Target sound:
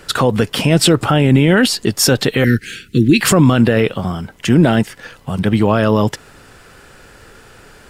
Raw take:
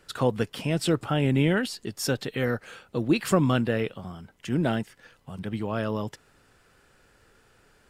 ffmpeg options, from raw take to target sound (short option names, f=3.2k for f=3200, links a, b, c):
-filter_complex "[0:a]asettb=1/sr,asplit=3[a][b][c];[a]atrim=end=2.444[d];[b]atrim=start=2.44:end=3.21,asetpts=PTS-STARTPTS,afade=t=in:d=0.004:c=qsin,afade=t=out:st=0.766:d=0.004:c=qsin,asuperstop=centerf=800:order=8:qfactor=0.59[e];[c]atrim=start=3.206[f];[d][e]acrossfade=d=0.004:c1=hsin:c2=qsin[g];[g][f]acrossfade=d=0.004:c1=qsin:c2=hsin,alimiter=level_in=19dB:limit=-1dB:release=50:level=0:latency=1,volume=-1dB"